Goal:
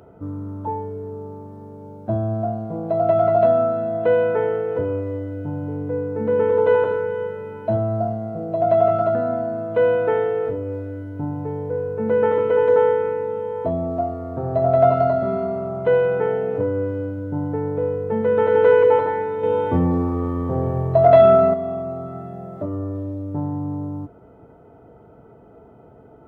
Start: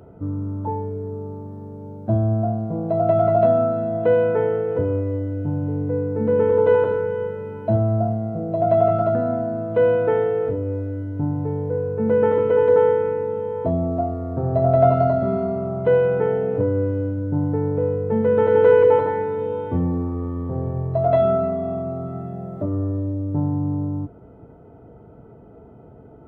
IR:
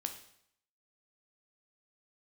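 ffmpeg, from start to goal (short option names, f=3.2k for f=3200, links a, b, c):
-filter_complex "[0:a]lowshelf=f=390:g=-8.5,asettb=1/sr,asplit=3[a][b][c];[a]atrim=end=19.434[d];[b]atrim=start=19.43:end=21.54,asetpts=PTS-STARTPTS,afade=t=in:d=0.004:c=qsin,afade=t=out:st=2.106:d=0.004:c=qsin,acontrast=67[e];[c]atrim=start=21.536[f];[d][e]acrossfade=d=0.004:c1=hsin:c2=qsin[g];[g][f]acrossfade=d=0.004:c1=qsin:c2=hsin,volume=3dB"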